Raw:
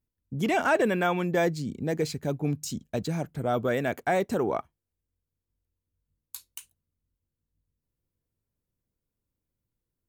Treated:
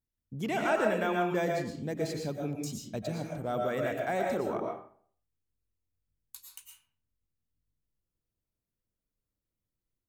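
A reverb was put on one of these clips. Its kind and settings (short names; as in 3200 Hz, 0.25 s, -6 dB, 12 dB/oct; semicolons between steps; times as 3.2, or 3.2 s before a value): digital reverb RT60 0.53 s, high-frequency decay 0.65×, pre-delay 75 ms, DRR 0.5 dB; gain -7 dB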